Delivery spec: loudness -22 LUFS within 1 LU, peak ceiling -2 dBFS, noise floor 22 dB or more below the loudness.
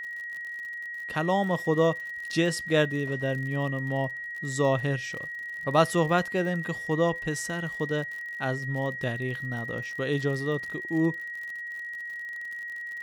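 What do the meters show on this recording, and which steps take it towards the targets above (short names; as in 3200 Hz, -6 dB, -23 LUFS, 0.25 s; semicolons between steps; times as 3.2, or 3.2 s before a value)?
ticks 56/s; steady tone 1900 Hz; tone level -34 dBFS; loudness -28.5 LUFS; peak -9.0 dBFS; loudness target -22.0 LUFS
-> de-click; notch 1900 Hz, Q 30; gain +6.5 dB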